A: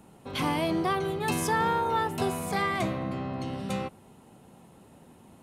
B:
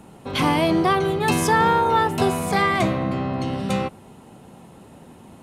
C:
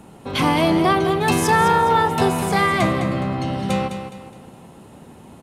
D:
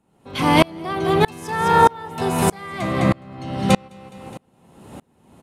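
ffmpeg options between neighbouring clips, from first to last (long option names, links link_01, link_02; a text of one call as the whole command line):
ffmpeg -i in.wav -af "highshelf=frequency=11000:gain=-6.5,volume=8.5dB" out.wav
ffmpeg -i in.wav -af "aecho=1:1:208|416|624|832:0.355|0.131|0.0486|0.018,volume=1.5dB" out.wav
ffmpeg -i in.wav -af "aeval=exprs='val(0)*pow(10,-32*if(lt(mod(-1.6*n/s,1),2*abs(-1.6)/1000),1-mod(-1.6*n/s,1)/(2*abs(-1.6)/1000),(mod(-1.6*n/s,1)-2*abs(-1.6)/1000)/(1-2*abs(-1.6)/1000))/20)':channel_layout=same,volume=8dB" out.wav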